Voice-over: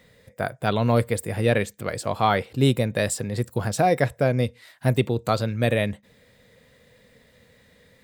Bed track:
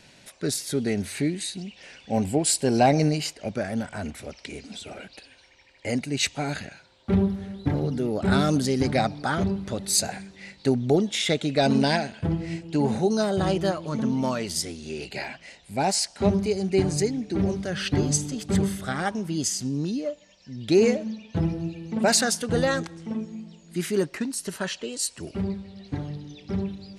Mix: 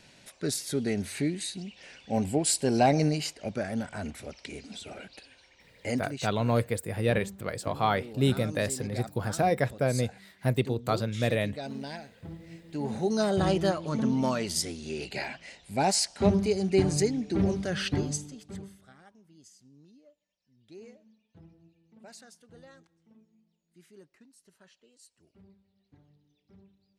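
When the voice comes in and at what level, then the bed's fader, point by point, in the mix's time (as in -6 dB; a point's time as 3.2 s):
5.60 s, -5.5 dB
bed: 5.98 s -3.5 dB
6.29 s -17 dB
12.42 s -17 dB
13.27 s -1.5 dB
17.8 s -1.5 dB
19.06 s -29.5 dB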